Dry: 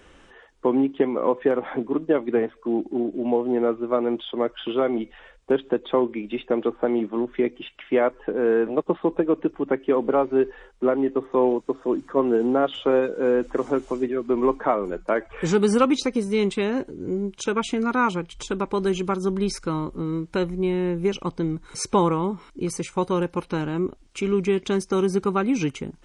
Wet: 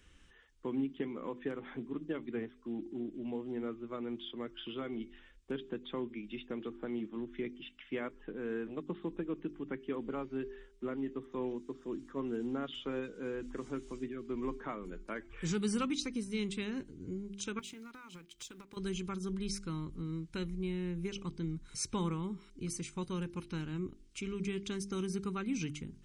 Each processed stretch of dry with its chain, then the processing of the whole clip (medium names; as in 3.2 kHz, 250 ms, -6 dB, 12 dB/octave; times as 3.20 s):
17.59–18.77 s: companding laws mixed up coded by A + high-pass 370 Hz 6 dB/octave + compression 12:1, threshold -31 dBFS
whole clip: amplifier tone stack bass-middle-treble 6-0-2; de-hum 49.66 Hz, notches 8; trim +7 dB